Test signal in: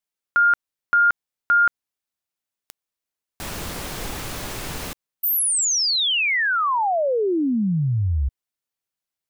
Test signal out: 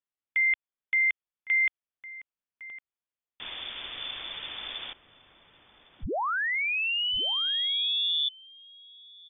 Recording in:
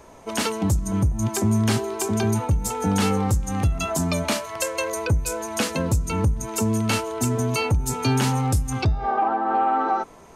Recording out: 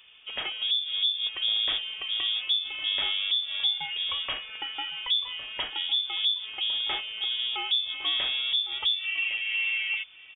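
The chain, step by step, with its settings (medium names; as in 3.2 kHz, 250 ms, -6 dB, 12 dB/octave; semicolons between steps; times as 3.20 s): frequency inversion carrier 3.5 kHz; echo from a far wall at 190 m, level -13 dB; dynamic bell 150 Hz, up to -8 dB, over -52 dBFS, Q 0.8; trim -7.5 dB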